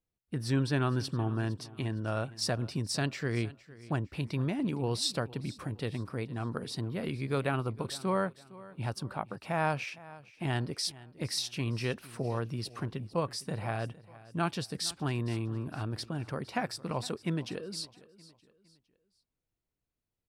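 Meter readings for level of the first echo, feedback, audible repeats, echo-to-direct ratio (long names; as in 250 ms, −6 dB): −19.5 dB, 38%, 2, −19.0 dB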